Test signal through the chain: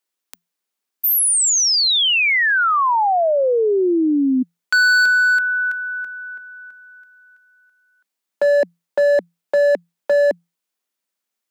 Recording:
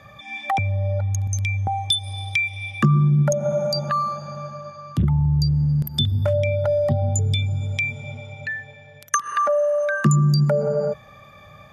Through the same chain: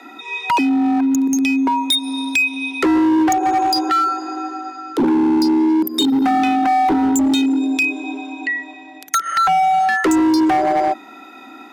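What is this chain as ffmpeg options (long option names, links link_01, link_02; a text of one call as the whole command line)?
ffmpeg -i in.wav -af "aeval=exprs='0.562*(cos(1*acos(clip(val(0)/0.562,-1,1)))-cos(1*PI/2))+0.0112*(cos(5*acos(clip(val(0)/0.562,-1,1)))-cos(5*PI/2))':channel_layout=same,afreqshift=170,volume=18.5dB,asoftclip=hard,volume=-18.5dB,volume=6dB" out.wav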